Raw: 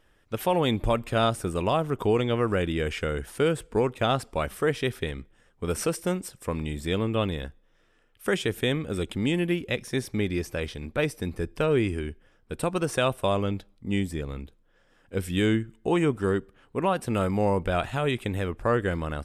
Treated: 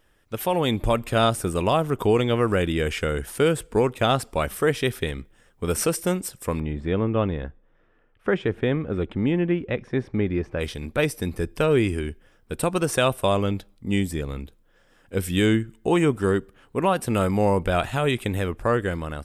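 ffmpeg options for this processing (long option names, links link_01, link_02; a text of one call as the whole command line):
ffmpeg -i in.wav -filter_complex "[0:a]asplit=3[link_01][link_02][link_03];[link_01]afade=type=out:start_time=6.59:duration=0.02[link_04];[link_02]lowpass=1700,afade=type=in:start_time=6.59:duration=0.02,afade=type=out:start_time=10.59:duration=0.02[link_05];[link_03]afade=type=in:start_time=10.59:duration=0.02[link_06];[link_04][link_05][link_06]amix=inputs=3:normalize=0,highshelf=frequency=9700:gain=8.5,dynaudnorm=framelen=170:gausssize=9:maxgain=3.5dB" out.wav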